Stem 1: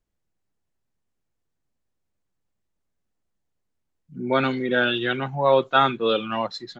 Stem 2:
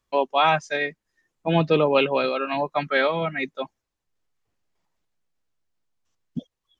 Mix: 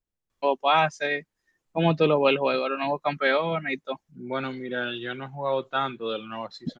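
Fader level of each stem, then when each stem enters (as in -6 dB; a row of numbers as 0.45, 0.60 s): -8.5, -1.5 dB; 0.00, 0.30 s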